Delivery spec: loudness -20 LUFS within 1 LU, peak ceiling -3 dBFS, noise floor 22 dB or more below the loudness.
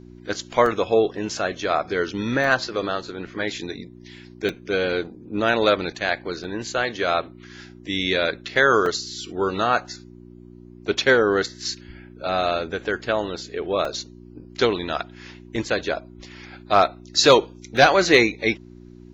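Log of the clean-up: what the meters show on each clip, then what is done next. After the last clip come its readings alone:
dropouts 8; longest dropout 2.6 ms; hum 60 Hz; harmonics up to 360 Hz; hum level -42 dBFS; loudness -22.0 LUFS; peak -4.0 dBFS; loudness target -20.0 LUFS
-> interpolate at 0.66/2.44/4.49/6.44/8.86/13.85/15.56/17.77, 2.6 ms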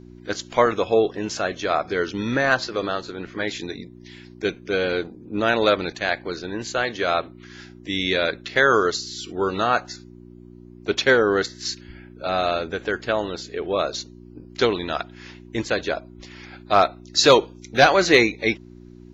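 dropouts 0; hum 60 Hz; harmonics up to 360 Hz; hum level -42 dBFS
-> de-hum 60 Hz, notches 6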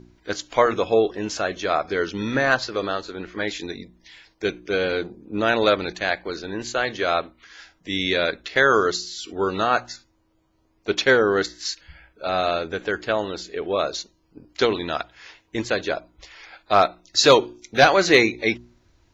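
hum none; loudness -22.0 LUFS; peak -3.5 dBFS; loudness target -20.0 LUFS
-> gain +2 dB; limiter -3 dBFS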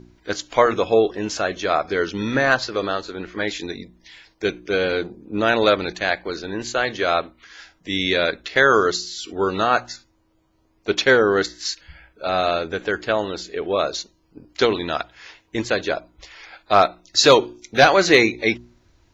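loudness -20.5 LUFS; peak -3.0 dBFS; noise floor -62 dBFS

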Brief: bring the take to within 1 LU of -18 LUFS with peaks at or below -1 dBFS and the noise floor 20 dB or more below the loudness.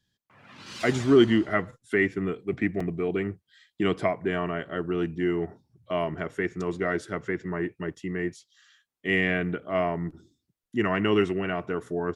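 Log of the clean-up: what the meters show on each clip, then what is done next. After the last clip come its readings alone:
dropouts 1; longest dropout 4.3 ms; loudness -27.5 LUFS; peak -7.0 dBFS; loudness target -18.0 LUFS
-> interpolate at 2.8, 4.3 ms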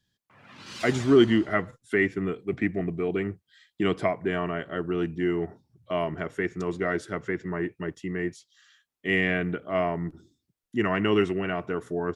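dropouts 0; loudness -27.5 LUFS; peak -7.0 dBFS; loudness target -18.0 LUFS
-> gain +9.5 dB; limiter -1 dBFS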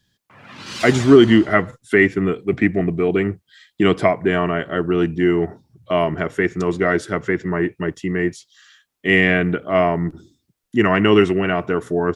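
loudness -18.0 LUFS; peak -1.0 dBFS; noise floor -73 dBFS

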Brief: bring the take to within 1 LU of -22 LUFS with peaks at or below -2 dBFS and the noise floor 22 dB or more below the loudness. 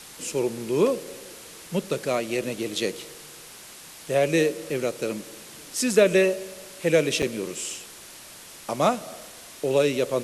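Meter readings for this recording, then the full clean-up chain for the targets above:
dropouts 1; longest dropout 6.6 ms; noise floor -45 dBFS; noise floor target -47 dBFS; loudness -25.0 LUFS; peak -5.5 dBFS; loudness target -22.0 LUFS
-> interpolate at 7.22, 6.6 ms; denoiser 6 dB, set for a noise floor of -45 dBFS; gain +3 dB

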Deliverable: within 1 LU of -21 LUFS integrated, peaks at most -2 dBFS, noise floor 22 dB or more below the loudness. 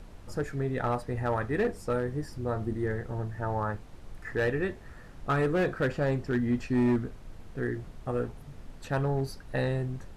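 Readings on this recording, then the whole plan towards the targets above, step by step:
clipped 1.1%; flat tops at -21.0 dBFS; noise floor -48 dBFS; noise floor target -53 dBFS; loudness -31.0 LUFS; peak -21.0 dBFS; loudness target -21.0 LUFS
-> clip repair -21 dBFS; noise print and reduce 6 dB; gain +10 dB

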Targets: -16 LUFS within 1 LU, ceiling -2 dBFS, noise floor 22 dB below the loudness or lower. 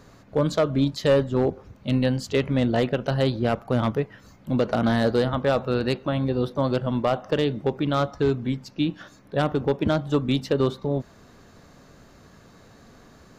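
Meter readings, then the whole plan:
loudness -24.5 LUFS; peak -12.0 dBFS; loudness target -16.0 LUFS
-> gain +8.5 dB

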